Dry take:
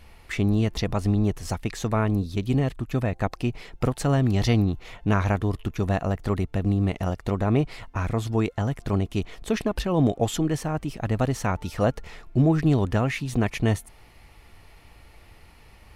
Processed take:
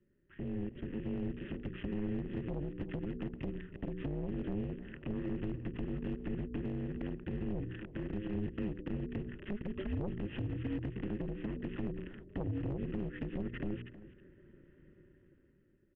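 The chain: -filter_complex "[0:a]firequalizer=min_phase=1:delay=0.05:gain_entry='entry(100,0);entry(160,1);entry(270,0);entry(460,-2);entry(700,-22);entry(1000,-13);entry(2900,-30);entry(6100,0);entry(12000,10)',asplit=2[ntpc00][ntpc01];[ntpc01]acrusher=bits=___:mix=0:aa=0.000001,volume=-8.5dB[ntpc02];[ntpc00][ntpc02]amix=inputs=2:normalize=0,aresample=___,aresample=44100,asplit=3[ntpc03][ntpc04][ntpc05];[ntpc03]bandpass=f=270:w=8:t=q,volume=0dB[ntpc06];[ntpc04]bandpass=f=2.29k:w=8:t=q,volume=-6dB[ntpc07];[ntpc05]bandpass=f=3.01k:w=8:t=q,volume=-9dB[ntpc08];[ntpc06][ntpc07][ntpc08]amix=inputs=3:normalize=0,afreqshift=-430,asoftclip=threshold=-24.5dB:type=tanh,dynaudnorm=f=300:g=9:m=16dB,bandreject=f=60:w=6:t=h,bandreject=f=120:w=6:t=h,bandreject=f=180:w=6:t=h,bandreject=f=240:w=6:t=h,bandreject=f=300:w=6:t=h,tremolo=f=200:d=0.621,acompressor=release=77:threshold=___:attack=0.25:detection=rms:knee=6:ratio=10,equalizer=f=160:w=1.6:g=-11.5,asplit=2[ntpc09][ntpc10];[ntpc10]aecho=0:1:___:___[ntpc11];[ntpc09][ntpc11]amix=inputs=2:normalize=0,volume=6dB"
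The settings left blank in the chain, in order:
5, 8000, -33dB, 318, 0.158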